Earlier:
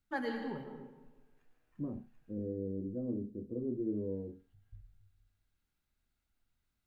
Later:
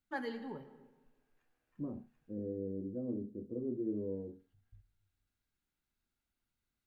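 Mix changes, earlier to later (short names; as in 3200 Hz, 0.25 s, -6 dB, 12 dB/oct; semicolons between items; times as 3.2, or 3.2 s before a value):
first voice: send -10.0 dB; master: add low shelf 140 Hz -6.5 dB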